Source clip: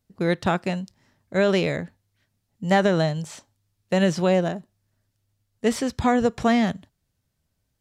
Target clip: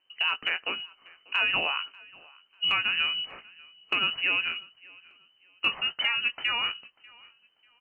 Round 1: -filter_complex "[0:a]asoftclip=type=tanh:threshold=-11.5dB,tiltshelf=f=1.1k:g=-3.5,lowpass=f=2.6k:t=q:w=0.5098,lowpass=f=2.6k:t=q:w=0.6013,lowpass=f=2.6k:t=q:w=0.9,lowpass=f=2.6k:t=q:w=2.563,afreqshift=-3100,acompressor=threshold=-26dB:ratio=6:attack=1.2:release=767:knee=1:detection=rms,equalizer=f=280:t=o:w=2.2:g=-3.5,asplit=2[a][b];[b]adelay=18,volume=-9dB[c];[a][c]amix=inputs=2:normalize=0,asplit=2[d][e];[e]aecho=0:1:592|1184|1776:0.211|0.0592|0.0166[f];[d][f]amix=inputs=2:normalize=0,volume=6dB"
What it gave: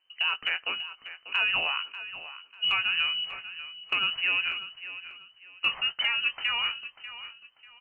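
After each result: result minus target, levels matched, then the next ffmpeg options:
soft clip: distortion +16 dB; echo-to-direct +11 dB; 250 Hz band -6.5 dB
-filter_complex "[0:a]asoftclip=type=tanh:threshold=-2dB,tiltshelf=f=1.1k:g=-3.5,lowpass=f=2.6k:t=q:w=0.5098,lowpass=f=2.6k:t=q:w=0.6013,lowpass=f=2.6k:t=q:w=0.9,lowpass=f=2.6k:t=q:w=2.563,afreqshift=-3100,acompressor=threshold=-26dB:ratio=6:attack=1.2:release=767:knee=1:detection=rms,equalizer=f=280:t=o:w=2.2:g=-3.5,asplit=2[a][b];[b]adelay=18,volume=-9dB[c];[a][c]amix=inputs=2:normalize=0,asplit=2[d][e];[e]aecho=0:1:592|1184|1776:0.211|0.0592|0.0166[f];[d][f]amix=inputs=2:normalize=0,volume=6dB"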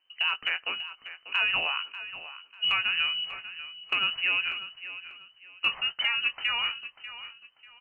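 echo-to-direct +11 dB; 250 Hz band -6.5 dB
-filter_complex "[0:a]asoftclip=type=tanh:threshold=-2dB,tiltshelf=f=1.1k:g=-3.5,lowpass=f=2.6k:t=q:w=0.5098,lowpass=f=2.6k:t=q:w=0.6013,lowpass=f=2.6k:t=q:w=0.9,lowpass=f=2.6k:t=q:w=2.563,afreqshift=-3100,acompressor=threshold=-26dB:ratio=6:attack=1.2:release=767:knee=1:detection=rms,equalizer=f=280:t=o:w=2.2:g=-3.5,asplit=2[a][b];[b]adelay=18,volume=-9dB[c];[a][c]amix=inputs=2:normalize=0,asplit=2[d][e];[e]aecho=0:1:592|1184:0.0596|0.0167[f];[d][f]amix=inputs=2:normalize=0,volume=6dB"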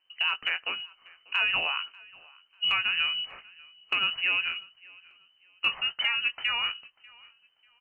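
250 Hz band -7.0 dB
-filter_complex "[0:a]asoftclip=type=tanh:threshold=-2dB,tiltshelf=f=1.1k:g=-3.5,lowpass=f=2.6k:t=q:w=0.5098,lowpass=f=2.6k:t=q:w=0.6013,lowpass=f=2.6k:t=q:w=0.9,lowpass=f=2.6k:t=q:w=2.563,afreqshift=-3100,acompressor=threshold=-26dB:ratio=6:attack=1.2:release=767:knee=1:detection=rms,equalizer=f=280:t=o:w=2.2:g=4.5,asplit=2[a][b];[b]adelay=18,volume=-9dB[c];[a][c]amix=inputs=2:normalize=0,asplit=2[d][e];[e]aecho=0:1:592|1184:0.0596|0.0167[f];[d][f]amix=inputs=2:normalize=0,volume=6dB"

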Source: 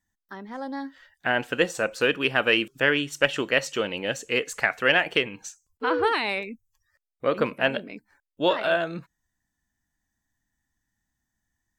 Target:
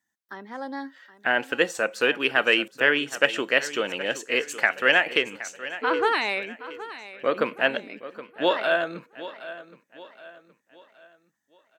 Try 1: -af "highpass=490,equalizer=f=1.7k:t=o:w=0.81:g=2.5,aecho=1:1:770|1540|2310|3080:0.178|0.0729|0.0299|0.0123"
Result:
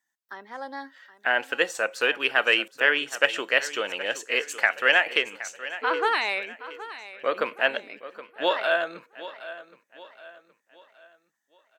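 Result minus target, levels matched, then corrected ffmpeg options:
250 Hz band -7.0 dB
-af "highpass=240,equalizer=f=1.7k:t=o:w=0.81:g=2.5,aecho=1:1:770|1540|2310|3080:0.178|0.0729|0.0299|0.0123"

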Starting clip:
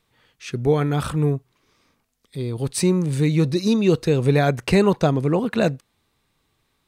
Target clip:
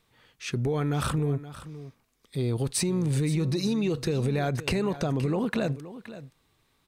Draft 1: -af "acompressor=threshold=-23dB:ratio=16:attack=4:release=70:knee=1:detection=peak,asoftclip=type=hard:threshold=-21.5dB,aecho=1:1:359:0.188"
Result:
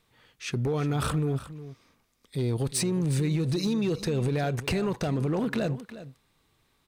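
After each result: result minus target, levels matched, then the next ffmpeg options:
hard clip: distortion +28 dB; echo 0.163 s early
-af "acompressor=threshold=-23dB:ratio=16:attack=4:release=70:knee=1:detection=peak,asoftclip=type=hard:threshold=-15dB,aecho=1:1:359:0.188"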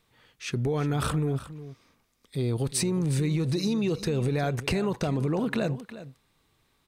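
echo 0.163 s early
-af "acompressor=threshold=-23dB:ratio=16:attack=4:release=70:knee=1:detection=peak,asoftclip=type=hard:threshold=-15dB,aecho=1:1:522:0.188"

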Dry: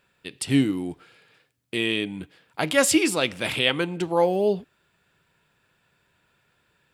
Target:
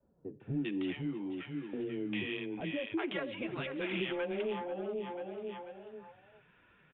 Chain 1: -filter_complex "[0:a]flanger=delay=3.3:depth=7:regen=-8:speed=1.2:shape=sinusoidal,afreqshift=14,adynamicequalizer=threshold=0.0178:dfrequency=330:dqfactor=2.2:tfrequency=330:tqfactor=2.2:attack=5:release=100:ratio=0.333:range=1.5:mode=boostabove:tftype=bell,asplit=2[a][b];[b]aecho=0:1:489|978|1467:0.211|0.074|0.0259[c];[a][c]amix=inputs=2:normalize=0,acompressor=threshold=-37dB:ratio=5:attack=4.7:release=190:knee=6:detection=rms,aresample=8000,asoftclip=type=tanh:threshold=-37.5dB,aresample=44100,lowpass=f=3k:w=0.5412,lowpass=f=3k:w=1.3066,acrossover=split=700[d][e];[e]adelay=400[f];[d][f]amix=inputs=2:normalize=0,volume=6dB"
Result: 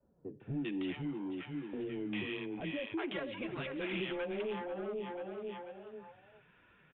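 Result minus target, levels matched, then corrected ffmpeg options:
soft clip: distortion +8 dB
-filter_complex "[0:a]flanger=delay=3.3:depth=7:regen=-8:speed=1.2:shape=sinusoidal,afreqshift=14,adynamicequalizer=threshold=0.0178:dfrequency=330:dqfactor=2.2:tfrequency=330:tqfactor=2.2:attack=5:release=100:ratio=0.333:range=1.5:mode=boostabove:tftype=bell,asplit=2[a][b];[b]aecho=0:1:489|978|1467:0.211|0.074|0.0259[c];[a][c]amix=inputs=2:normalize=0,acompressor=threshold=-37dB:ratio=5:attack=4.7:release=190:knee=6:detection=rms,aresample=8000,asoftclip=type=tanh:threshold=-31.5dB,aresample=44100,lowpass=f=3k:w=0.5412,lowpass=f=3k:w=1.3066,acrossover=split=700[d][e];[e]adelay=400[f];[d][f]amix=inputs=2:normalize=0,volume=6dB"

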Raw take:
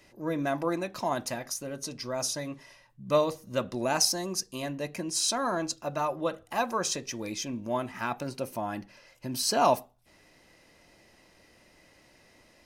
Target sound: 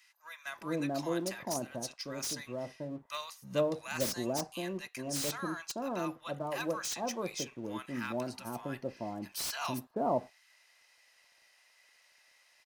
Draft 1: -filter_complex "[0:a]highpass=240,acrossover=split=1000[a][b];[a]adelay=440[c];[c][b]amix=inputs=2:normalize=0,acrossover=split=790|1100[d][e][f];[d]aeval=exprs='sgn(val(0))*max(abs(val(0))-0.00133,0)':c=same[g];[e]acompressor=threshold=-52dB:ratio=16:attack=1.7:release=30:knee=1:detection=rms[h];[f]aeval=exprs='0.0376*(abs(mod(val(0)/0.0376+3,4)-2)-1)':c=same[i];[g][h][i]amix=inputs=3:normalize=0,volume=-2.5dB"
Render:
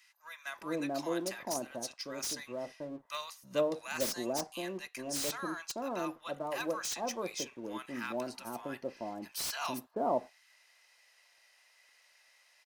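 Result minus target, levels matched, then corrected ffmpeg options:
125 Hz band -7.5 dB
-filter_complex "[0:a]highpass=94,acrossover=split=1000[a][b];[a]adelay=440[c];[c][b]amix=inputs=2:normalize=0,acrossover=split=790|1100[d][e][f];[d]aeval=exprs='sgn(val(0))*max(abs(val(0))-0.00133,0)':c=same[g];[e]acompressor=threshold=-52dB:ratio=16:attack=1.7:release=30:knee=1:detection=rms[h];[f]aeval=exprs='0.0376*(abs(mod(val(0)/0.0376+3,4)-2)-1)':c=same[i];[g][h][i]amix=inputs=3:normalize=0,volume=-2.5dB"

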